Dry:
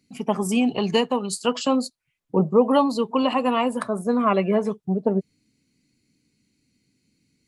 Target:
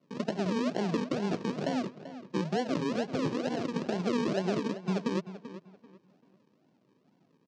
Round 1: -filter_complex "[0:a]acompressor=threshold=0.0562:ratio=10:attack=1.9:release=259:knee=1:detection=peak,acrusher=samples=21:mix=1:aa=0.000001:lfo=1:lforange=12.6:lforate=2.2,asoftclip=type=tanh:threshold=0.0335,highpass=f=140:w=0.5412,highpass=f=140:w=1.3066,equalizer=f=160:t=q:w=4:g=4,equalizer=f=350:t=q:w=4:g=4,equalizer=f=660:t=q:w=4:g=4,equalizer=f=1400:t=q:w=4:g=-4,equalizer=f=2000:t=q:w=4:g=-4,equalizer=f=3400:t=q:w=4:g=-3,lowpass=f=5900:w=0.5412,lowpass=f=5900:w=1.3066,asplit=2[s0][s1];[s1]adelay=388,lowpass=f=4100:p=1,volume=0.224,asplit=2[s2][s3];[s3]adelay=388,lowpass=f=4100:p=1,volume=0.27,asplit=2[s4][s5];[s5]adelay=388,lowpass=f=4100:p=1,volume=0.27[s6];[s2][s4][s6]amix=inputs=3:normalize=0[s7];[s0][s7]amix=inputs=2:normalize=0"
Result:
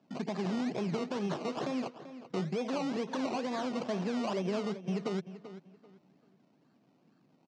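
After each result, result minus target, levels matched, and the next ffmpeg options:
saturation: distortion +15 dB; decimation with a swept rate: distortion -9 dB
-filter_complex "[0:a]acompressor=threshold=0.0562:ratio=10:attack=1.9:release=259:knee=1:detection=peak,acrusher=samples=21:mix=1:aa=0.000001:lfo=1:lforange=12.6:lforate=2.2,asoftclip=type=tanh:threshold=0.119,highpass=f=140:w=0.5412,highpass=f=140:w=1.3066,equalizer=f=160:t=q:w=4:g=4,equalizer=f=350:t=q:w=4:g=4,equalizer=f=660:t=q:w=4:g=4,equalizer=f=1400:t=q:w=4:g=-4,equalizer=f=2000:t=q:w=4:g=-4,equalizer=f=3400:t=q:w=4:g=-3,lowpass=f=5900:w=0.5412,lowpass=f=5900:w=1.3066,asplit=2[s0][s1];[s1]adelay=388,lowpass=f=4100:p=1,volume=0.224,asplit=2[s2][s3];[s3]adelay=388,lowpass=f=4100:p=1,volume=0.27,asplit=2[s4][s5];[s5]adelay=388,lowpass=f=4100:p=1,volume=0.27[s6];[s2][s4][s6]amix=inputs=3:normalize=0[s7];[s0][s7]amix=inputs=2:normalize=0"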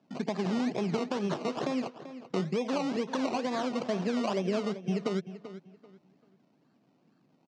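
decimation with a swept rate: distortion -9 dB
-filter_complex "[0:a]acompressor=threshold=0.0562:ratio=10:attack=1.9:release=259:knee=1:detection=peak,acrusher=samples=50:mix=1:aa=0.000001:lfo=1:lforange=30:lforate=2.2,asoftclip=type=tanh:threshold=0.119,highpass=f=140:w=0.5412,highpass=f=140:w=1.3066,equalizer=f=160:t=q:w=4:g=4,equalizer=f=350:t=q:w=4:g=4,equalizer=f=660:t=q:w=4:g=4,equalizer=f=1400:t=q:w=4:g=-4,equalizer=f=2000:t=q:w=4:g=-4,equalizer=f=3400:t=q:w=4:g=-3,lowpass=f=5900:w=0.5412,lowpass=f=5900:w=1.3066,asplit=2[s0][s1];[s1]adelay=388,lowpass=f=4100:p=1,volume=0.224,asplit=2[s2][s3];[s3]adelay=388,lowpass=f=4100:p=1,volume=0.27,asplit=2[s4][s5];[s5]adelay=388,lowpass=f=4100:p=1,volume=0.27[s6];[s2][s4][s6]amix=inputs=3:normalize=0[s7];[s0][s7]amix=inputs=2:normalize=0"

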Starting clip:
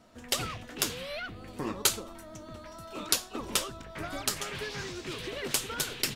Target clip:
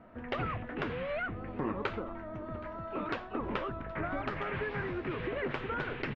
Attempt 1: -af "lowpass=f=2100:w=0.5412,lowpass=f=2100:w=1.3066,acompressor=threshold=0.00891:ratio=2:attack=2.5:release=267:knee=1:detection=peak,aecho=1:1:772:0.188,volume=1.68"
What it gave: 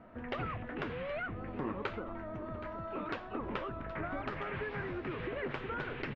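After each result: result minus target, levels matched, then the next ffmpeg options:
echo-to-direct +7 dB; compression: peak gain reduction +3 dB
-af "lowpass=f=2100:w=0.5412,lowpass=f=2100:w=1.3066,acompressor=threshold=0.00891:ratio=2:attack=2.5:release=267:knee=1:detection=peak,aecho=1:1:772:0.0841,volume=1.68"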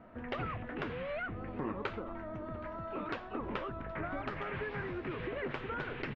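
compression: peak gain reduction +3 dB
-af "lowpass=f=2100:w=0.5412,lowpass=f=2100:w=1.3066,acompressor=threshold=0.0188:ratio=2:attack=2.5:release=267:knee=1:detection=peak,aecho=1:1:772:0.0841,volume=1.68"

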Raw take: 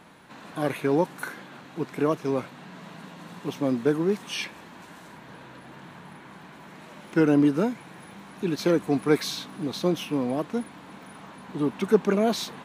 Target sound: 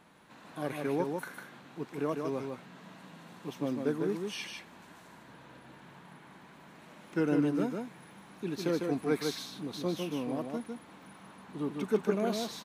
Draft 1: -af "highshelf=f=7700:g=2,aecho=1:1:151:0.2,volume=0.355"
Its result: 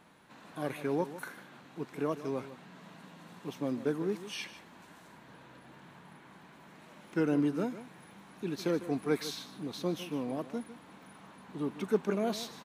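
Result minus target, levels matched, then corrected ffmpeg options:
echo-to-direct -9.5 dB
-af "highshelf=f=7700:g=2,aecho=1:1:151:0.596,volume=0.355"

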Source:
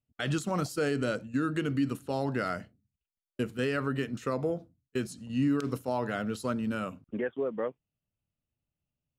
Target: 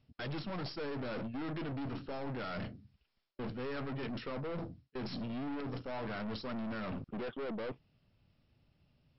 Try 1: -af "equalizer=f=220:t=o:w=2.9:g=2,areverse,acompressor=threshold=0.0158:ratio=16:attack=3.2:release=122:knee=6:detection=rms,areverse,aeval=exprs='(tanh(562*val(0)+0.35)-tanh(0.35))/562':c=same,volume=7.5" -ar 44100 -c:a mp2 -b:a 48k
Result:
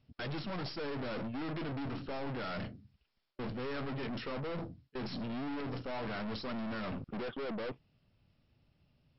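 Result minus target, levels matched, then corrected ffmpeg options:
compression: peak gain reduction -5.5 dB
-af "equalizer=f=220:t=o:w=2.9:g=2,areverse,acompressor=threshold=0.00794:ratio=16:attack=3.2:release=122:knee=6:detection=rms,areverse,aeval=exprs='(tanh(562*val(0)+0.35)-tanh(0.35))/562':c=same,volume=7.5" -ar 44100 -c:a mp2 -b:a 48k

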